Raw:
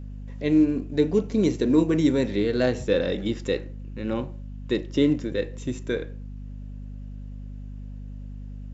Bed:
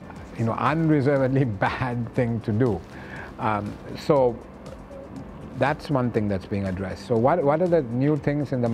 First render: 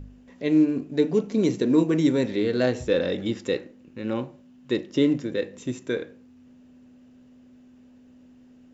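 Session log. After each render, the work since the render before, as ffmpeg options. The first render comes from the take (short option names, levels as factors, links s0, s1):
-af "bandreject=f=50:t=h:w=4,bandreject=f=100:t=h:w=4,bandreject=f=150:t=h:w=4,bandreject=f=200:t=h:w=4"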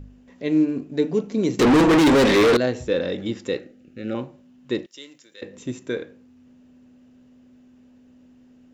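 -filter_complex "[0:a]asettb=1/sr,asplit=3[s0][s1][s2];[s0]atrim=end=1.594[s3];[s1]atrim=start=1.59:end=2.57,asetpts=PTS-STARTPTS,afade=t=in:d=0.004:c=qsin,afade=t=out:st=0.976:d=0.004:c=qsin,asplit=2[s4][s5];[s5]highpass=f=720:p=1,volume=70.8,asoftclip=type=tanh:threshold=0.376[s6];[s4][s6]amix=inputs=2:normalize=0,lowpass=f=3400:p=1,volume=0.501[s7];[s2]atrim=start=2.566[s8];[s3][s7]acrossfade=d=0.004:c1=hsin:c2=qsin[s9];[s9][s8]acrossfade=d=0.004:c1=qsin:c2=hsin,asettb=1/sr,asplit=3[s10][s11][s12];[s10]atrim=end=3.594[s13];[s11]atrim=start=3.59:end=4.15,asetpts=PTS-STARTPTS,afade=t=in:d=0.004:c=qsin,afade=t=out:st=0.556:d=0.004:c=qsin,asuperstop=centerf=980:order=20:qfactor=2.7[s14];[s12]atrim=start=4.146[s15];[s13][s14]acrossfade=d=0.004:c1=hsin:c2=qsin[s16];[s16][s15]acrossfade=d=0.004:c1=qsin:c2=hsin,asettb=1/sr,asplit=3[s17][s18][s19];[s17]atrim=end=4.864[s20];[s18]atrim=start=4.86:end=5.42,asetpts=PTS-STARTPTS,afade=t=in:d=0.004:c=qsin,afade=t=out:st=0.556:d=0.004:c=qsin,aderivative[s21];[s19]atrim=start=5.416[s22];[s20][s21]acrossfade=d=0.004:c1=hsin:c2=qsin[s23];[s23][s22]acrossfade=d=0.004:c1=qsin:c2=hsin"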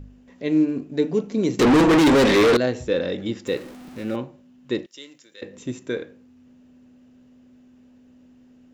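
-filter_complex "[0:a]asettb=1/sr,asplit=3[s0][s1][s2];[s0]atrim=end=3.474[s3];[s1]atrim=start=3.47:end=4.16,asetpts=PTS-STARTPTS,afade=t=in:d=0.004:c=qsin,afade=t=out:st=0.686:d=0.004:c=qsin,aeval=exprs='val(0)+0.5*0.0126*sgn(val(0))':c=same[s4];[s2]atrim=start=4.156[s5];[s3][s4]acrossfade=d=0.004:c1=hsin:c2=qsin[s6];[s6][s5]acrossfade=d=0.004:c1=qsin:c2=hsin"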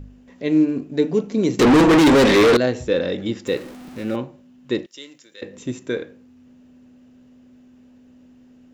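-af "volume=1.33"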